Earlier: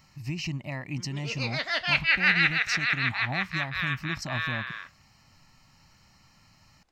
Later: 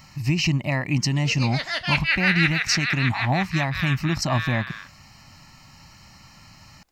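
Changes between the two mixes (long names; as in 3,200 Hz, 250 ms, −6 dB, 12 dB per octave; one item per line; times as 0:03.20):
speech +11.0 dB
background: remove high-frequency loss of the air 64 metres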